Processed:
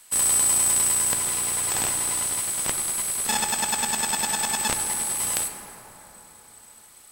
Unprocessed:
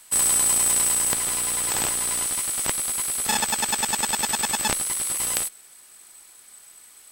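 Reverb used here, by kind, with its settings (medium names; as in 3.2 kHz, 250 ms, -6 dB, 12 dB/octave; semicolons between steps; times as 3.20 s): plate-style reverb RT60 4.3 s, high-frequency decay 0.35×, pre-delay 0 ms, DRR 5 dB; trim -2 dB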